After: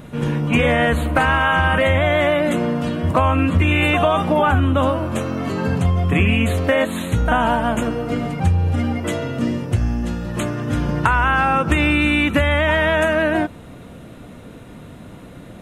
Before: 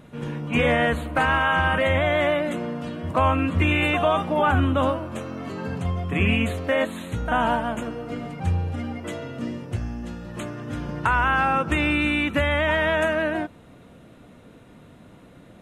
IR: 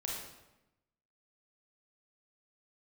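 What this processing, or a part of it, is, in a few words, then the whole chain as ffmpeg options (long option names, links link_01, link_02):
ASMR close-microphone chain: -af "lowshelf=frequency=130:gain=4.5,acompressor=threshold=-21dB:ratio=6,highshelf=frequency=9500:gain=5.5,volume=8.5dB"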